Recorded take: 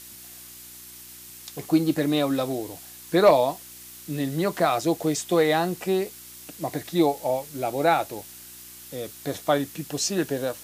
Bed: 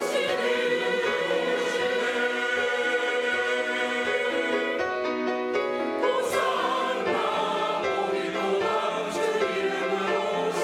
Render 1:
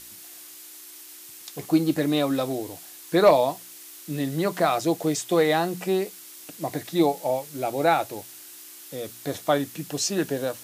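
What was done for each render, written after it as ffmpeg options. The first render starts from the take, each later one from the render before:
-af "bandreject=f=60:t=h:w=4,bandreject=f=120:t=h:w=4,bandreject=f=180:t=h:w=4,bandreject=f=240:t=h:w=4"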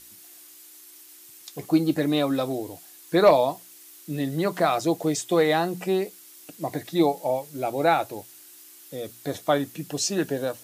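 -af "afftdn=nr=6:nf=-45"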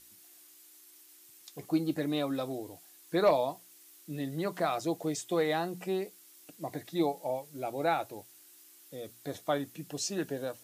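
-af "volume=-8.5dB"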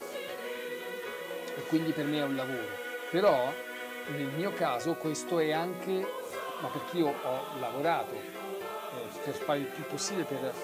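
-filter_complex "[1:a]volume=-13.5dB[a];[0:a][a]amix=inputs=2:normalize=0"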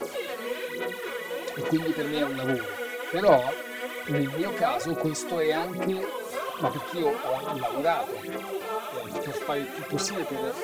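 -filter_complex "[0:a]asplit=2[a][b];[b]volume=31.5dB,asoftclip=hard,volume=-31.5dB,volume=-8dB[c];[a][c]amix=inputs=2:normalize=0,aphaser=in_gain=1:out_gain=1:delay=4.6:decay=0.63:speed=1.2:type=sinusoidal"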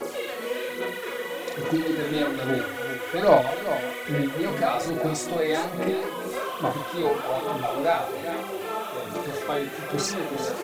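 -filter_complex "[0:a]asplit=2[a][b];[b]adelay=40,volume=-4dB[c];[a][c]amix=inputs=2:normalize=0,aecho=1:1:391:0.299"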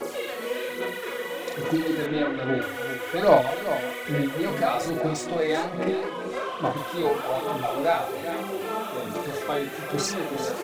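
-filter_complex "[0:a]asettb=1/sr,asplit=3[a][b][c];[a]atrim=end=2.064[d];[b]atrim=start=2.06:end=2.62,asetpts=PTS-STARTPTS,afade=t=in:d=0.004:c=qsin,afade=t=out:st=0.556:d=0.004:c=qsin,lowpass=3.2k[e];[c]atrim=start=2.616[f];[d][e]acrossfade=d=0.004:c1=hsin:c2=qsin[g];[g][f]acrossfade=d=0.004:c1=qsin:c2=hsin,asettb=1/sr,asplit=3[h][i][j];[h]atrim=end=5.004[k];[i]atrim=start=5:end=6.77,asetpts=PTS-STARTPTS,afade=t=in:d=0.004:c=qsin,afade=t=out:st=1.766:d=0.004:c=qsin,adynamicsmooth=sensitivity=7:basefreq=4.3k[l];[j]atrim=start=6.766[m];[k][l]acrossfade=d=0.004:c1=hsin:c2=qsin[n];[n][m]acrossfade=d=0.004:c1=qsin:c2=hsin,asettb=1/sr,asplit=3[o][p][q];[o]atrim=end=8.404[r];[p]atrim=start=8.4:end=9.12,asetpts=PTS-STARTPTS,afade=t=in:d=0.004:c=qsin,afade=t=out:st=0.716:d=0.004:c=qsin,equalizer=f=230:w=1.7:g=7.5[s];[q]atrim=start=9.116[t];[r][s]acrossfade=d=0.004:c1=hsin:c2=qsin[u];[u][t]acrossfade=d=0.004:c1=qsin:c2=hsin"

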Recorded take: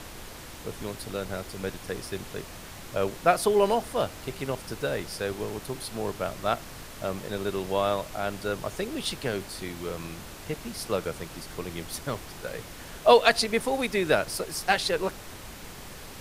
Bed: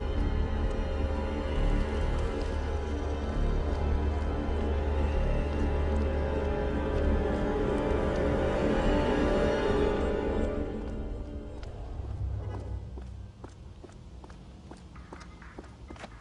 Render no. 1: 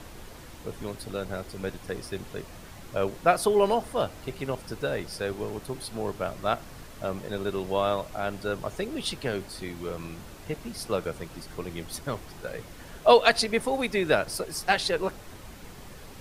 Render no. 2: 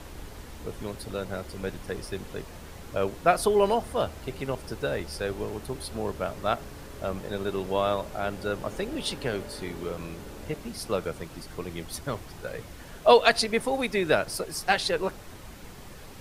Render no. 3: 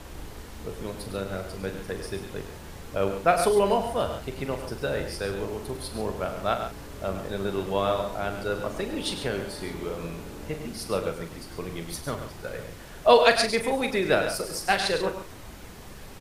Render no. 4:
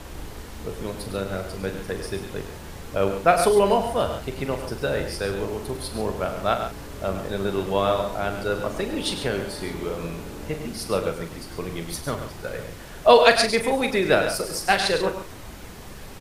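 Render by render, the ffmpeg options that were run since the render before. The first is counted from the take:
-af "afftdn=nr=6:nf=-43"
-filter_complex "[1:a]volume=-16dB[a];[0:a][a]amix=inputs=2:normalize=0"
-filter_complex "[0:a]asplit=2[a][b];[b]adelay=41,volume=-9.5dB[c];[a][c]amix=inputs=2:normalize=0,aecho=1:1:102|137:0.316|0.282"
-af "volume=3.5dB,alimiter=limit=-2dB:level=0:latency=1"

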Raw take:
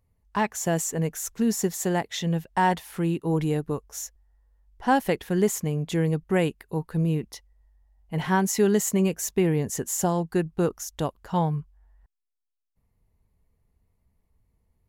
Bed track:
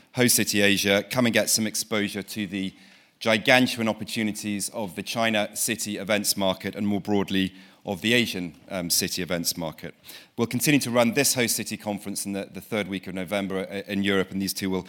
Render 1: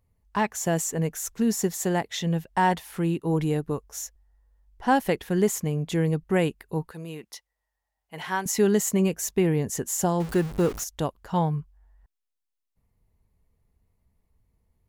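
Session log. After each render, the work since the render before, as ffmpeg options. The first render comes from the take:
-filter_complex "[0:a]asettb=1/sr,asplit=3[a][b][c];[a]atrim=end=6.914[d];[b]atrim=start=6.91:end=8.46,asetpts=PTS-STARTPTS,afade=t=in:d=0.004:c=qsin,afade=t=out:st=1.546:d=0.004:c=qsin,highpass=f=970:p=1[e];[c]atrim=start=8.456[f];[d][e]acrossfade=d=0.004:c1=hsin:c2=qsin[g];[g][f]acrossfade=d=0.004:c1=qsin:c2=hsin,asettb=1/sr,asplit=3[h][i][j];[h]atrim=end=10.204[k];[i]atrim=start=10.2:end=10.84,asetpts=PTS-STARTPTS,afade=t=in:d=0.004:c=qsin,afade=t=out:st=0.636:d=0.004:c=qsin,aeval=exprs='val(0)+0.5*0.0266*sgn(val(0))':c=same[l];[j]atrim=start=10.836[m];[k][l]acrossfade=d=0.004:c1=hsin:c2=qsin[n];[n][m]acrossfade=d=0.004:c1=qsin:c2=hsin"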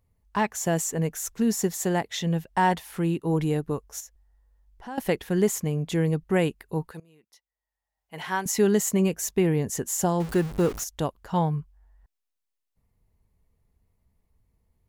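-filter_complex "[0:a]asettb=1/sr,asplit=3[a][b][c];[a]atrim=end=4.004[d];[b]atrim=start=4:end=4.98,asetpts=PTS-STARTPTS,afade=t=in:d=0.004:c=qsin,afade=t=out:st=0.976:d=0.004:c=qsin,acompressor=threshold=-47dB:ratio=2:attack=3.2:release=140:knee=1:detection=peak[e];[c]atrim=start=4.976[f];[d][e]acrossfade=d=0.004:c1=hsin:c2=qsin[g];[g][f]acrossfade=d=0.004:c1=qsin:c2=hsin,asplit=2[h][i];[h]atrim=end=7,asetpts=PTS-STARTPTS,afade=t=out:st=6.996:d=0.004:c=hsin:silence=0.0841395[j];[i]atrim=start=7,asetpts=PTS-STARTPTS,afade=t=in:d=1.17:c=qua:silence=0.0841395[k];[j][k]concat=n=2:v=0:a=1"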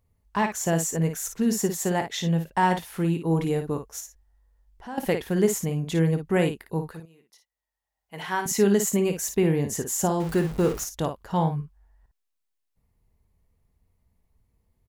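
-af "aecho=1:1:24|55:0.178|0.398"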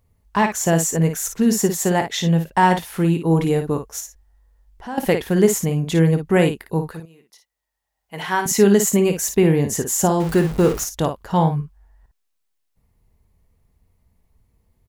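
-af "volume=6.5dB"

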